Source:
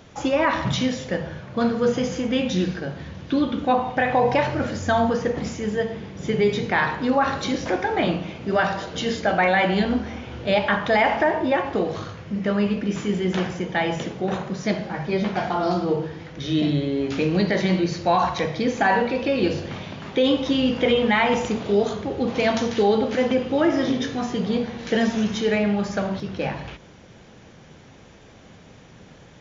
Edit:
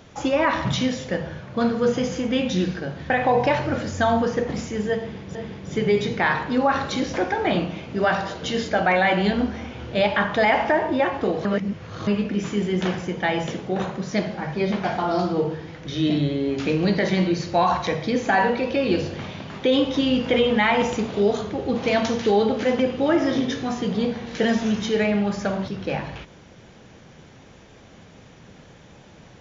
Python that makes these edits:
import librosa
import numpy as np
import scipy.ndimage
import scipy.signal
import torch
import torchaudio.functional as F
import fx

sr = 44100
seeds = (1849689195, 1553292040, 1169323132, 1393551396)

y = fx.edit(x, sr, fx.cut(start_s=3.1, length_s=0.88),
    fx.repeat(start_s=5.87, length_s=0.36, count=2),
    fx.reverse_span(start_s=11.97, length_s=0.62), tone=tone)